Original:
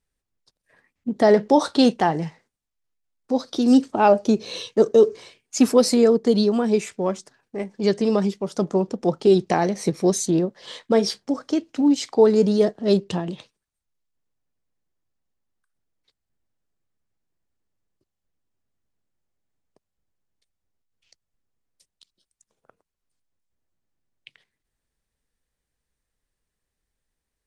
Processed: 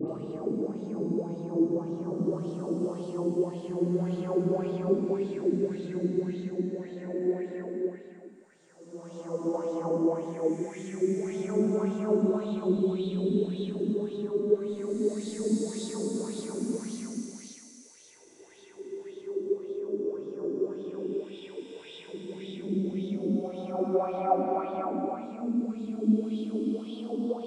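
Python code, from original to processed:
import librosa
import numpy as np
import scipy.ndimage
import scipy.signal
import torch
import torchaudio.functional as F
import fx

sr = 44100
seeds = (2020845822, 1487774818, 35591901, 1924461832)

p1 = x[::-1].copy()
p2 = fx.doppler_pass(p1, sr, speed_mps=40, closest_m=29.0, pass_at_s=10.74)
p3 = fx.curve_eq(p2, sr, hz=(120.0, 290.0, 1500.0, 4700.0, 7900.0), db=(0, 8, 0, -11, 3))
p4 = fx.over_compress(p3, sr, threshold_db=-36.0, ratio=-1.0)
p5 = fx.paulstretch(p4, sr, seeds[0], factor=4.3, window_s=0.5, from_s=17.66)
p6 = fx.dispersion(p5, sr, late='highs', ms=84.0, hz=1600.0)
p7 = p6 + fx.echo_wet_highpass(p6, sr, ms=232, feedback_pct=71, hz=2200.0, wet_db=-6.0, dry=0)
p8 = fx.bell_lfo(p7, sr, hz=1.8, low_hz=240.0, high_hz=3700.0, db=13)
y = p8 * 10.0 ** (2.0 / 20.0)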